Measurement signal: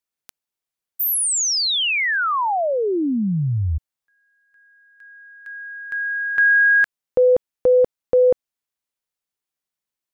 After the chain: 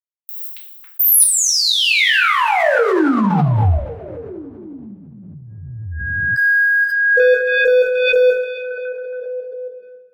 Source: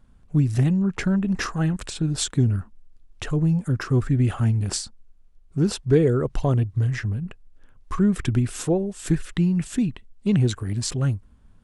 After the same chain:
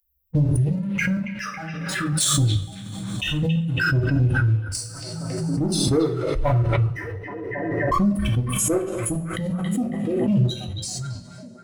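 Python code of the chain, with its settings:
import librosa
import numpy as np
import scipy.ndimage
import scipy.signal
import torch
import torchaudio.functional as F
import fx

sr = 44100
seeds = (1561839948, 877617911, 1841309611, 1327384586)

p1 = fx.bin_expand(x, sr, power=3.0)
p2 = fx.peak_eq(p1, sr, hz=9800.0, db=9.5, octaves=0.23)
p3 = fx.level_steps(p2, sr, step_db=14)
p4 = fx.leveller(p3, sr, passes=2)
p5 = p4 + fx.echo_stepped(p4, sr, ms=275, hz=2800.0, octaves=-0.7, feedback_pct=70, wet_db=-3.0, dry=0)
p6 = fx.rev_double_slope(p5, sr, seeds[0], early_s=0.45, late_s=2.7, knee_db=-22, drr_db=-1.0)
p7 = fx.pre_swell(p6, sr, db_per_s=23.0)
y = p7 * librosa.db_to_amplitude(1.0)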